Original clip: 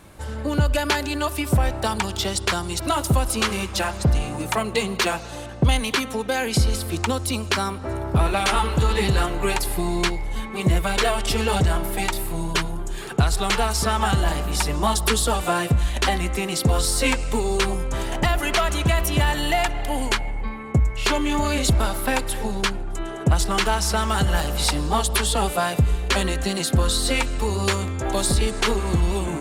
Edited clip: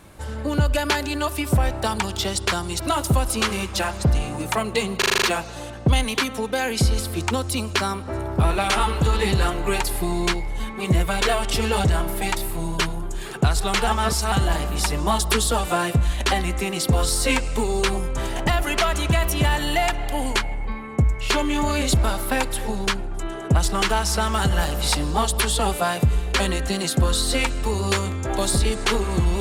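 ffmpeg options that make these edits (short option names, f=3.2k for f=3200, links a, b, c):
-filter_complex "[0:a]asplit=9[a][b][c][d][e][f][g][h][i];[a]atrim=end=5.022[j];[b]atrim=start=4.978:end=5.022[k];[c]atrim=start=4.978:end=5.022[l];[d]atrim=start=4.978:end=5.022[m];[e]atrim=start=4.978:end=5.022[n];[f]atrim=start=4.978:end=5.022[o];[g]atrim=start=4.978:end=13.632[p];[h]atrim=start=13.628:end=14.082,asetpts=PTS-STARTPTS,areverse[q];[i]atrim=start=14.078[r];[j][k]acrossfade=d=0.004:c1=hsin:c2=hsin[s];[s][l]acrossfade=d=0.004:c1=hsin:c2=hsin[t];[t][m]acrossfade=d=0.004:c1=hsin:c2=hsin[u];[u][n]acrossfade=d=0.004:c1=hsin:c2=hsin[v];[v][o]acrossfade=d=0.004:c1=hsin:c2=hsin[w];[w][p]acrossfade=d=0.004:c1=hsin:c2=hsin[x];[x][q]acrossfade=d=0.004:c1=hsin:c2=hsin[y];[y][r]acrossfade=d=0.004:c1=hsin:c2=hsin"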